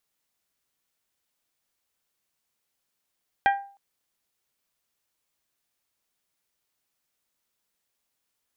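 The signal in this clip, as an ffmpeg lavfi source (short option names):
-f lavfi -i "aevalsrc='0.178*pow(10,-3*t/0.43)*sin(2*PI*796*t)+0.1*pow(10,-3*t/0.265)*sin(2*PI*1592*t)+0.0562*pow(10,-3*t/0.233)*sin(2*PI*1910.4*t)+0.0316*pow(10,-3*t/0.199)*sin(2*PI*2388*t)+0.0178*pow(10,-3*t/0.163)*sin(2*PI*3184*t)':d=0.31:s=44100"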